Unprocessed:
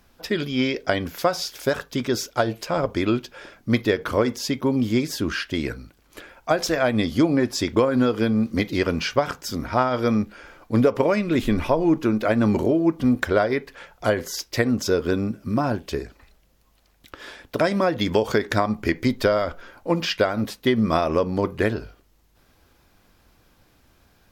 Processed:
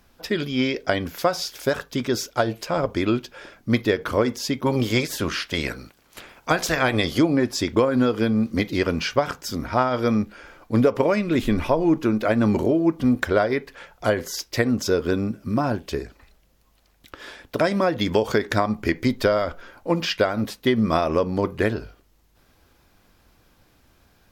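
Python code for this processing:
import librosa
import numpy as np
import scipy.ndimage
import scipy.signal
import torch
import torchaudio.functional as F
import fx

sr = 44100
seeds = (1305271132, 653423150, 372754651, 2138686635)

y = fx.spec_clip(x, sr, under_db=14, at=(4.65, 7.18), fade=0.02)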